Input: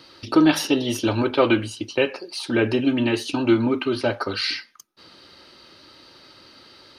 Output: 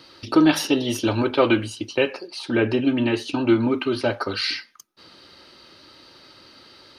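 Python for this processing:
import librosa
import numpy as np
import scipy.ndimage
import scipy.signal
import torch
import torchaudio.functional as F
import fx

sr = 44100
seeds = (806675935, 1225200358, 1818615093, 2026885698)

y = fx.high_shelf(x, sr, hz=7000.0, db=-11.0, at=(2.27, 3.63))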